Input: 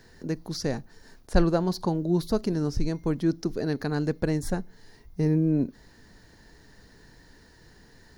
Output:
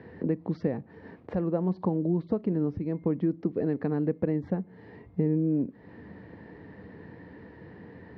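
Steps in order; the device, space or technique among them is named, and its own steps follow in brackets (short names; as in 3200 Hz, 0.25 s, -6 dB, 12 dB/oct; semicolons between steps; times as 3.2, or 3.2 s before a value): bass amplifier (compressor 4:1, threshold -37 dBFS, peak gain reduction 19 dB; speaker cabinet 84–2300 Hz, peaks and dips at 88 Hz +4 dB, 190 Hz +6 dB, 300 Hz +5 dB, 490 Hz +6 dB, 1500 Hz -8 dB); gain +7 dB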